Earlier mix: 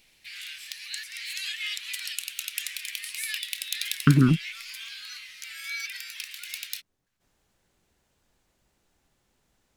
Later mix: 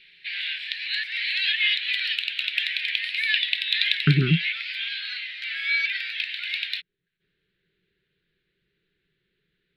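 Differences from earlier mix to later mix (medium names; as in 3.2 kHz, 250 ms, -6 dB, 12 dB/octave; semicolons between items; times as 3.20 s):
speech -9.5 dB; master: add FFT filter 100 Hz 0 dB, 170 Hz +14 dB, 250 Hz -3 dB, 400 Hz +14 dB, 730 Hz -18 dB, 1.1 kHz -9 dB, 1.6 kHz +12 dB, 4 kHz +10 dB, 6.3 kHz -23 dB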